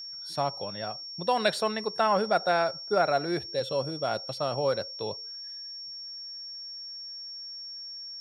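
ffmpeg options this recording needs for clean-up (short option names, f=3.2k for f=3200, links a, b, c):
-af "bandreject=f=5.5k:w=30"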